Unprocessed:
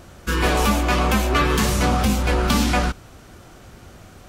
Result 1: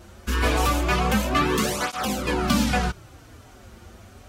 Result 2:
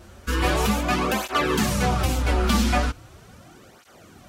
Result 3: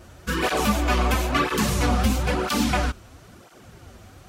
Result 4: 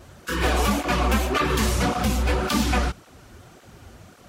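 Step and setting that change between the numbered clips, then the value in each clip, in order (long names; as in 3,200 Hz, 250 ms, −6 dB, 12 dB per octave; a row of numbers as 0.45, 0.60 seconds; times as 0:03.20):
through-zero flanger with one copy inverted, nulls at: 0.26, 0.39, 1, 1.8 Hertz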